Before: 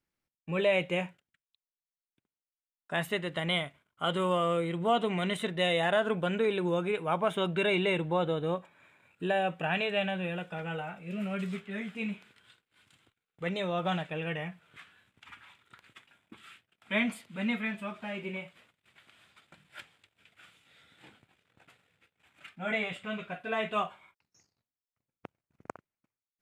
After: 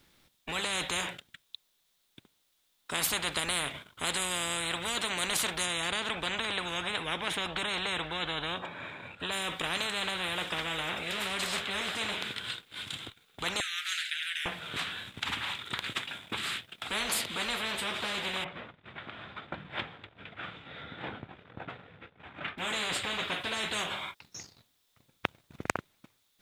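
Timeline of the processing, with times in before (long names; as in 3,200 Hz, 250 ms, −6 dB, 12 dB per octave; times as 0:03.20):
0:05.64–0:09.31: low-pass filter 3,600 Hz → 1,400 Hz 6 dB per octave
0:13.60–0:14.46: Butterworth high-pass 1,600 Hz 72 dB per octave
0:18.44–0:22.58: low-pass filter 1,400 Hz
whole clip: parametric band 3,600 Hz +10 dB 0.4 octaves; every bin compressed towards the loudest bin 10 to 1; level +6 dB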